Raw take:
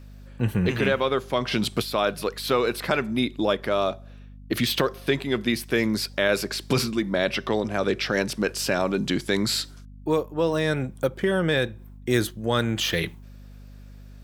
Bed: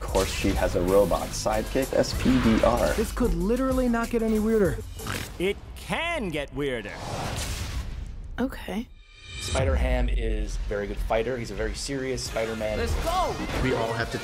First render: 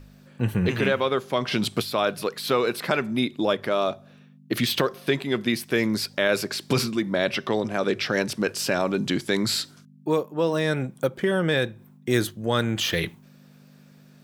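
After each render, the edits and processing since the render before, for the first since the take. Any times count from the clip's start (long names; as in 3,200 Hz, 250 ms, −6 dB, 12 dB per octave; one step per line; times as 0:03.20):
hum removal 50 Hz, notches 2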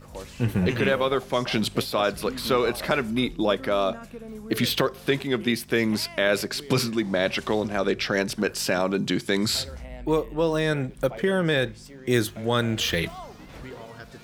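mix in bed −15 dB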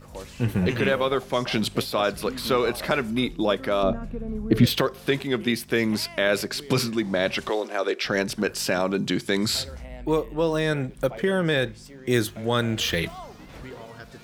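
0:03.83–0:04.67: spectral tilt −3.5 dB per octave
0:07.49–0:08.05: high-pass filter 330 Hz 24 dB per octave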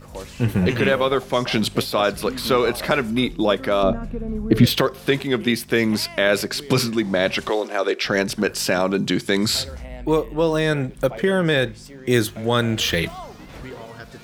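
level +4 dB
brickwall limiter −3 dBFS, peak gain reduction 1 dB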